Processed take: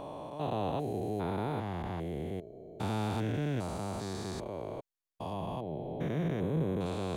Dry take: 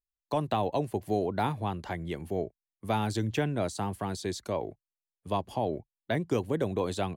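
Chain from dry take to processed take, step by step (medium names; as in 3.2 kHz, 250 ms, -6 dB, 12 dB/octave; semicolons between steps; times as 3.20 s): spectrogram pixelated in time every 400 ms; 5.33–6.86 s: graphic EQ with 31 bands 160 Hz +9 dB, 5 kHz -9 dB, 8 kHz -9 dB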